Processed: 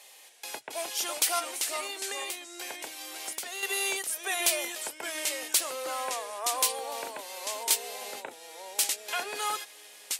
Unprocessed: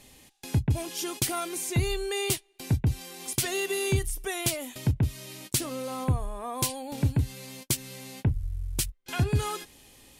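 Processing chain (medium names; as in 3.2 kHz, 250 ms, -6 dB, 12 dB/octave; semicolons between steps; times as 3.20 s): high-pass 550 Hz 24 dB/octave; 1.39–3.63 s: compression 6:1, threshold -38 dBFS, peak gain reduction 13.5 dB; ever faster or slower copies 242 ms, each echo -2 st, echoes 2, each echo -6 dB; trim +3 dB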